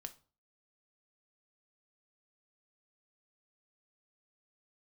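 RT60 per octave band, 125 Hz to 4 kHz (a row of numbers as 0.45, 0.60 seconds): 0.50, 0.45, 0.40, 0.40, 0.30, 0.30 seconds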